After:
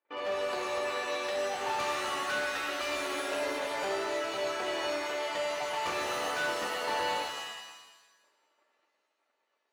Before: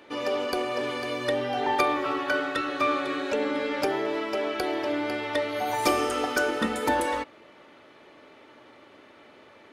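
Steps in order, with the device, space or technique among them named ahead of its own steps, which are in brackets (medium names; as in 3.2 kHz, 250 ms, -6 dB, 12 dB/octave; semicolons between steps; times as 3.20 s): walkie-talkie (band-pass 530–2300 Hz; hard clipper -29 dBFS, distortion -9 dB; gate -51 dBFS, range -32 dB); high-pass 54 Hz; 2.68–3.59 s: comb 3 ms; pitch-shifted reverb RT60 1.1 s, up +7 st, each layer -2 dB, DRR 2.5 dB; trim -3 dB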